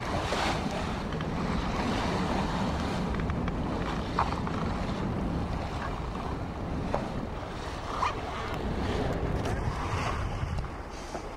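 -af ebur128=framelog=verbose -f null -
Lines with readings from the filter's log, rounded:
Integrated loudness:
  I:         -32.0 LUFS
  Threshold: -42.0 LUFS
Loudness range:
  LRA:         3.3 LU
  Threshold: -52.1 LUFS
  LRA low:   -33.9 LUFS
  LRA high:  -30.6 LUFS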